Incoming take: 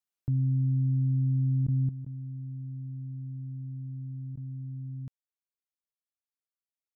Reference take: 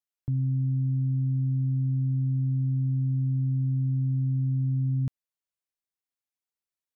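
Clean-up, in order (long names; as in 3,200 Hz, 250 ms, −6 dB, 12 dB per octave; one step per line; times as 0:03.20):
repair the gap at 0:01.67/0:02.05/0:04.36, 11 ms
level 0 dB, from 0:01.89 +12 dB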